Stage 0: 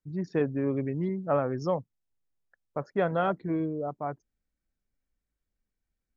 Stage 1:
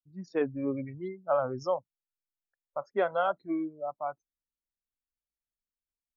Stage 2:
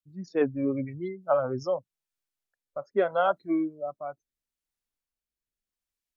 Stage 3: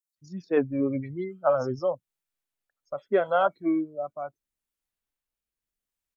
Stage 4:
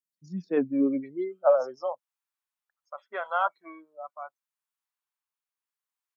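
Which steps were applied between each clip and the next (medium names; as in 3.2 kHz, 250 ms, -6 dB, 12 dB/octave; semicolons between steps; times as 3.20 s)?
spectral noise reduction 19 dB
rotary cabinet horn 6.3 Hz, later 0.8 Hz, at 0.95 s; trim +5.5 dB
bands offset in time highs, lows 160 ms, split 5.2 kHz; trim +1.5 dB
high-pass sweep 170 Hz -> 1 kHz, 0.41–2.13 s; trim -4.5 dB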